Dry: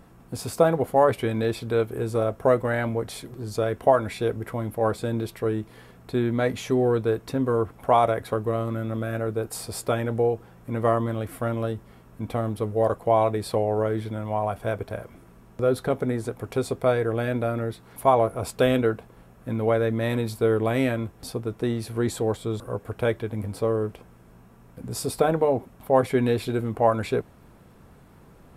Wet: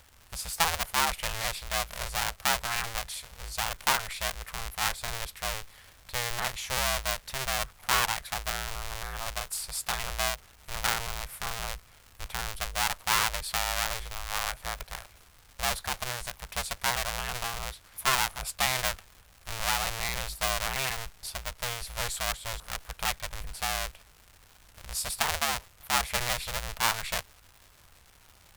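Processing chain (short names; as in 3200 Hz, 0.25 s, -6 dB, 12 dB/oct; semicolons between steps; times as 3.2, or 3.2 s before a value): cycle switcher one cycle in 2, inverted; passive tone stack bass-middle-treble 10-0-10; crackle 260/s -43 dBFS; gain +1.5 dB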